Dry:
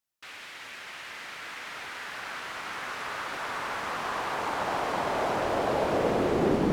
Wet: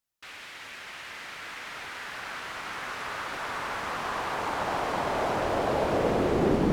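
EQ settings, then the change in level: low shelf 97 Hz +7 dB; 0.0 dB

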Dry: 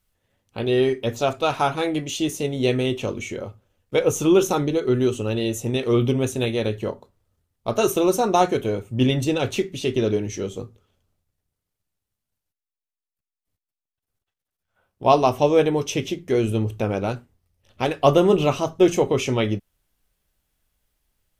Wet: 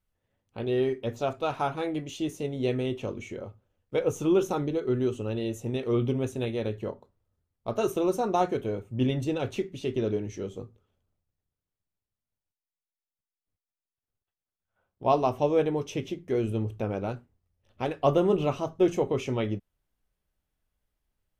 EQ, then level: high shelf 2500 Hz -8.5 dB; -6.5 dB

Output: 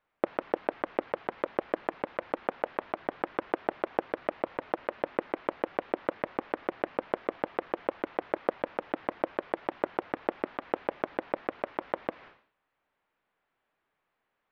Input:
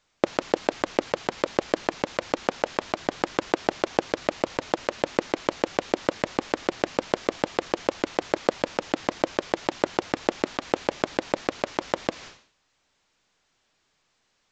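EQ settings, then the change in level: LPF 2100 Hz 12 dB/oct; air absorption 220 m; low shelf 260 Hz -10.5 dB; -3.0 dB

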